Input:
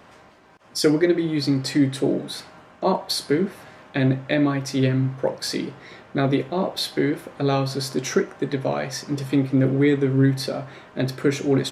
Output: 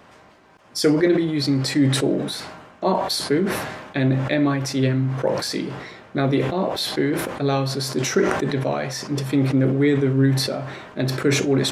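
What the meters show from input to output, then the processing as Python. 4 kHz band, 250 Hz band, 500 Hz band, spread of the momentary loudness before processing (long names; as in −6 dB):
+3.0 dB, +1.0 dB, +1.0 dB, 10 LU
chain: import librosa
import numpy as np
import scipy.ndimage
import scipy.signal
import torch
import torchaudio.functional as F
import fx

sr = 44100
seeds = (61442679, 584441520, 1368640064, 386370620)

y = fx.sustainer(x, sr, db_per_s=46.0)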